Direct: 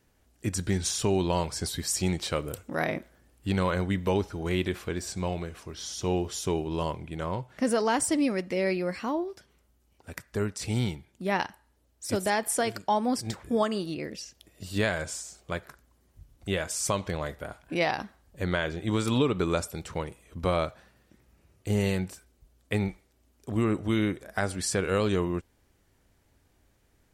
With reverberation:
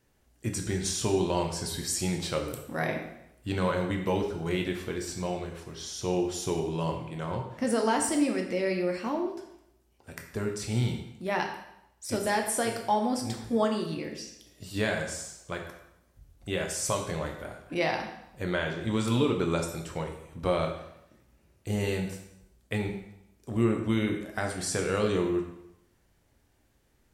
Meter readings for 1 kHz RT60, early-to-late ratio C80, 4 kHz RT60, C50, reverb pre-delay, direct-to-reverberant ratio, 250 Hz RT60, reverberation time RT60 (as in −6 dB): 0.80 s, 9.0 dB, 0.75 s, 6.5 dB, 4 ms, 2.0 dB, 0.80 s, 0.80 s